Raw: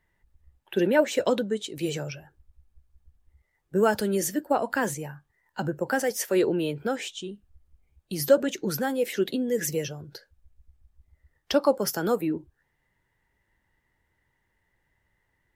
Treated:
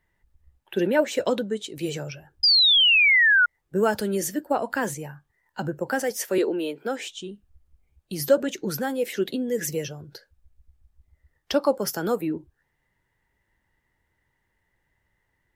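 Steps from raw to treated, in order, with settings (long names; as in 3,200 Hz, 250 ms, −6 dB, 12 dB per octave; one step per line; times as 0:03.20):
0:02.43–0:03.46: sound drawn into the spectrogram fall 1,400–5,000 Hz −17 dBFS
0:06.38–0:07.07: high-pass filter 240 Hz 24 dB per octave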